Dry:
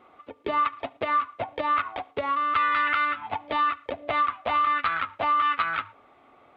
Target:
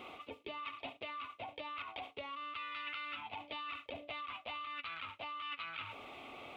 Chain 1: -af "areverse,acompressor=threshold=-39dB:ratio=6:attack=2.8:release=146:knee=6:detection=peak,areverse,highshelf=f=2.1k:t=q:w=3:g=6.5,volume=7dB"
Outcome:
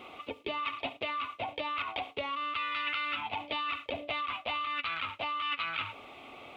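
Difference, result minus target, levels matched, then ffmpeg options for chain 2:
compressor: peak gain reduction -9.5 dB
-af "areverse,acompressor=threshold=-50.5dB:ratio=6:attack=2.8:release=146:knee=6:detection=peak,areverse,highshelf=f=2.1k:t=q:w=3:g=6.5,volume=7dB"

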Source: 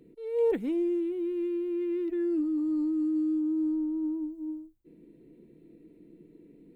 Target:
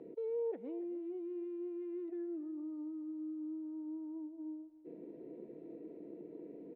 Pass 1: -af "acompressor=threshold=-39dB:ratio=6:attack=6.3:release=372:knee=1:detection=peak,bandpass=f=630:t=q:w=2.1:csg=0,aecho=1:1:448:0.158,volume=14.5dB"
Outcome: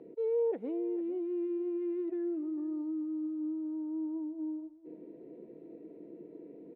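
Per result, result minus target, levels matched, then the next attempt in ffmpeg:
echo 0.171 s late; compressor: peak gain reduction -7 dB
-af "acompressor=threshold=-39dB:ratio=6:attack=6.3:release=372:knee=1:detection=peak,bandpass=f=630:t=q:w=2.1:csg=0,aecho=1:1:277:0.158,volume=14.5dB"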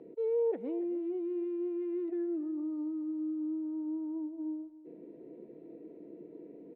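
compressor: peak gain reduction -7 dB
-af "acompressor=threshold=-47.5dB:ratio=6:attack=6.3:release=372:knee=1:detection=peak,bandpass=f=630:t=q:w=2.1:csg=0,aecho=1:1:277:0.158,volume=14.5dB"

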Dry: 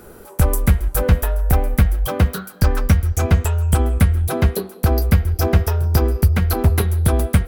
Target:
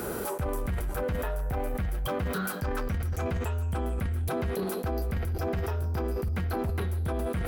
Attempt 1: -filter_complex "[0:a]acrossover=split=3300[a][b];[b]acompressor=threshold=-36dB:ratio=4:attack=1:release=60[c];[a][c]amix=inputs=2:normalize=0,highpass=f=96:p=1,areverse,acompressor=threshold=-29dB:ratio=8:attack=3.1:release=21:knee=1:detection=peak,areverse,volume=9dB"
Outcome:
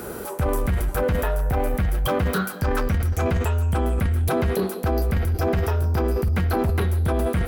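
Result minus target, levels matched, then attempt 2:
compressor: peak gain reduction -8.5 dB
-filter_complex "[0:a]acrossover=split=3300[a][b];[b]acompressor=threshold=-36dB:ratio=4:attack=1:release=60[c];[a][c]amix=inputs=2:normalize=0,highpass=f=96:p=1,areverse,acompressor=threshold=-38.5dB:ratio=8:attack=3.1:release=21:knee=1:detection=peak,areverse,volume=9dB"

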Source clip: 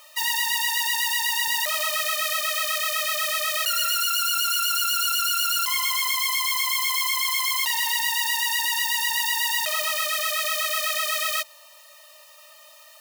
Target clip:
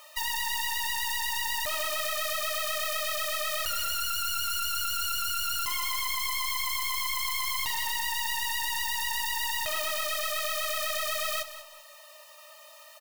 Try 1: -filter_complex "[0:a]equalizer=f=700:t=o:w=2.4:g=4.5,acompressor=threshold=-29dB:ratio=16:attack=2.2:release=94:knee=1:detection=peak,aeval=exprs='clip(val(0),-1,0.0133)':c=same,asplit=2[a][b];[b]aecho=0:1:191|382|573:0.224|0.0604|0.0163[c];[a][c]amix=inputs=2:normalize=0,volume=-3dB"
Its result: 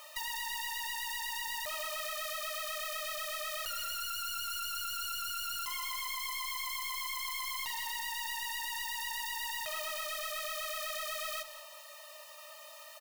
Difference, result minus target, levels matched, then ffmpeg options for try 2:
compressor: peak gain reduction +8.5 dB
-filter_complex "[0:a]equalizer=f=700:t=o:w=2.4:g=4.5,acompressor=threshold=-20dB:ratio=16:attack=2.2:release=94:knee=1:detection=peak,aeval=exprs='clip(val(0),-1,0.0133)':c=same,asplit=2[a][b];[b]aecho=0:1:191|382|573:0.224|0.0604|0.0163[c];[a][c]amix=inputs=2:normalize=0,volume=-3dB"

